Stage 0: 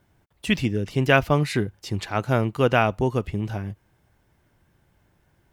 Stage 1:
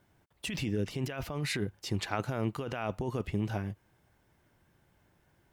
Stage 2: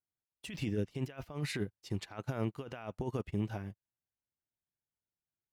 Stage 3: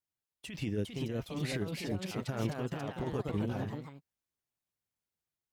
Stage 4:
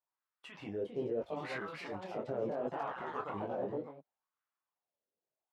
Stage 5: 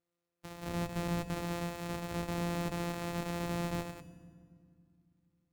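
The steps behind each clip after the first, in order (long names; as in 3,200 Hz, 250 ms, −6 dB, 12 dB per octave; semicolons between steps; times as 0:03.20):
low-shelf EQ 100 Hz −6 dB; compressor whose output falls as the input rises −26 dBFS, ratio −1; level −6.5 dB
brickwall limiter −23.5 dBFS, peak gain reduction 8.5 dB; expander for the loud parts 2.5 to 1, over −54 dBFS; level +1 dB
delay with pitch and tempo change per echo 455 ms, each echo +2 semitones, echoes 3
LFO wah 0.73 Hz 480–1,300 Hz, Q 2.8; in parallel at 0 dB: compressor whose output falls as the input rises −46 dBFS, ratio −0.5; on the sum: micro pitch shift up and down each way 26 cents; level +7 dB
samples sorted by size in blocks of 256 samples; tube saturation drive 38 dB, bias 0.6; feedback delay network reverb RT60 2.1 s, low-frequency decay 1.6×, high-frequency decay 0.6×, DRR 9.5 dB; level +8.5 dB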